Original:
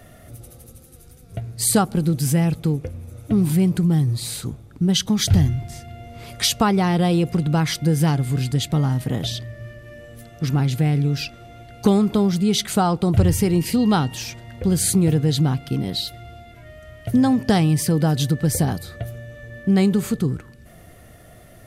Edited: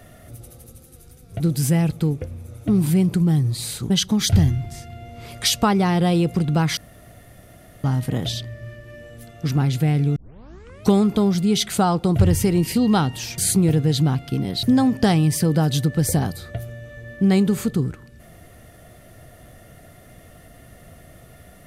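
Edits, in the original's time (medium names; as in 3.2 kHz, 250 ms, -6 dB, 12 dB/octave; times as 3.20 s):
1.40–2.03 s: delete
4.53–4.88 s: delete
7.75–8.82 s: room tone
11.14 s: tape start 0.75 s
14.36–14.77 s: delete
16.02–17.09 s: delete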